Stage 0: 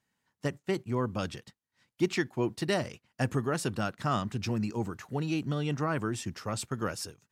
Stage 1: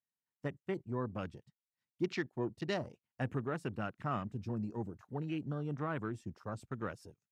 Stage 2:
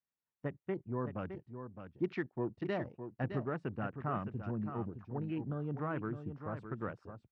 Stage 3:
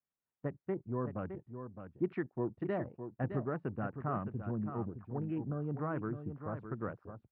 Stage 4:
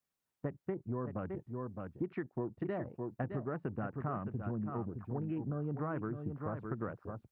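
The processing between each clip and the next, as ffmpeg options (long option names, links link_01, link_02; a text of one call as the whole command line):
ffmpeg -i in.wav -af "afwtdn=0.01,volume=-7dB" out.wav
ffmpeg -i in.wav -af "lowpass=2000,aecho=1:1:613:0.355" out.wav
ffmpeg -i in.wav -af "lowpass=1600,bandreject=frequency=880:width=25,volume=1dB" out.wav
ffmpeg -i in.wav -af "acompressor=threshold=-39dB:ratio=6,volume=5dB" out.wav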